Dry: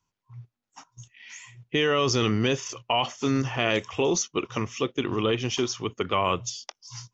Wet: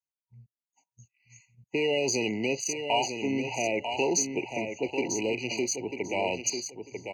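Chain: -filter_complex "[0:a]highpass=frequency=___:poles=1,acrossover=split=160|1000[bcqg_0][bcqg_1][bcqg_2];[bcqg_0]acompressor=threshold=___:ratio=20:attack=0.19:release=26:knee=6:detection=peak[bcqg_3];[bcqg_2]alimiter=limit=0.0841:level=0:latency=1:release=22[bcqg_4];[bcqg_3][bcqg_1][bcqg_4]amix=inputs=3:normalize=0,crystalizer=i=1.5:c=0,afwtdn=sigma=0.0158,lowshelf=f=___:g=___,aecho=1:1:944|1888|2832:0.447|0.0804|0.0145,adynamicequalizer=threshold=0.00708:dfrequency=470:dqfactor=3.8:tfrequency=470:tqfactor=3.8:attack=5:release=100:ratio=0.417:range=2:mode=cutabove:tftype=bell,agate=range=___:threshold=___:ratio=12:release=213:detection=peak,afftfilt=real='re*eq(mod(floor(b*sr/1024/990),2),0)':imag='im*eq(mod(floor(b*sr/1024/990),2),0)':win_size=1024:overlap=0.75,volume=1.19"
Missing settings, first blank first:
54, 0.00562, 370, -7.5, 0.501, 0.00141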